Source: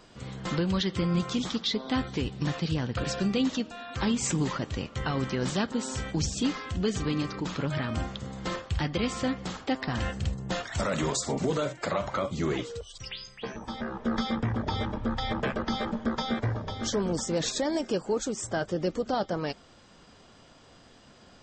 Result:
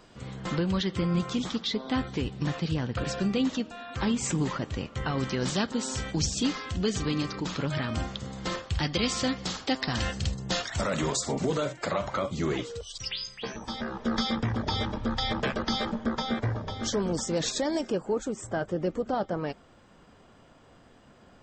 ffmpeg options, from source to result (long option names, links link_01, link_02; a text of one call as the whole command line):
ffmpeg -i in.wav -af "asetnsamples=nb_out_samples=441:pad=0,asendcmd='5.18 equalizer g 4;8.83 equalizer g 10;10.7 equalizer g 1;12.8 equalizer g 8;15.92 equalizer g 0.5;17.9 equalizer g -10.5',equalizer=frequency=5000:width_type=o:width=1.5:gain=-2.5" out.wav